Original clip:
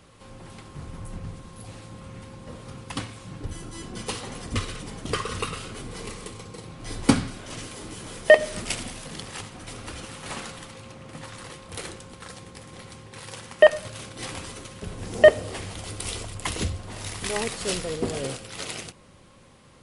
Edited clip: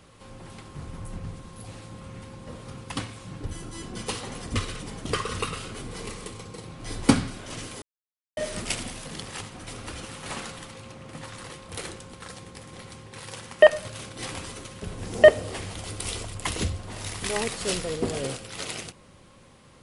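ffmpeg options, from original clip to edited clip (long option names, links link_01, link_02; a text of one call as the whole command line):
ffmpeg -i in.wav -filter_complex "[0:a]asplit=3[link_01][link_02][link_03];[link_01]atrim=end=7.82,asetpts=PTS-STARTPTS,afade=type=out:start_time=7.816:duration=0.004:curve=hsin[link_04];[link_02]atrim=start=7.82:end=8.37,asetpts=PTS-STARTPTS,volume=0[link_05];[link_03]atrim=start=8.37,asetpts=PTS-STARTPTS,afade=type=in:duration=0.004:curve=hsin[link_06];[link_04][link_05][link_06]concat=n=3:v=0:a=1" out.wav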